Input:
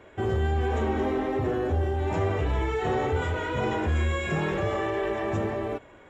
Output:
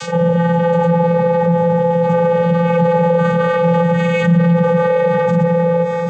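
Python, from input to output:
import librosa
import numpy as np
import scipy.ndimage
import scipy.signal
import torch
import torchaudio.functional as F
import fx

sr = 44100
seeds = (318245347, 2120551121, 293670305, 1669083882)

p1 = fx.granulator(x, sr, seeds[0], grain_ms=100.0, per_s=20.0, spray_ms=100.0, spread_st=0)
p2 = fx.quant_dither(p1, sr, seeds[1], bits=8, dither='triangular')
p3 = p1 + (p2 * 10.0 ** (-10.0 / 20.0))
p4 = fx.vocoder(p3, sr, bands=16, carrier='square', carrier_hz=170.0)
p5 = p4 + 10.0 ** (-15.0 / 20.0) * np.pad(p4, (int(786 * sr / 1000.0), 0))[:len(p4)]
p6 = fx.env_flatten(p5, sr, amount_pct=70)
y = p6 * 10.0 ** (6.5 / 20.0)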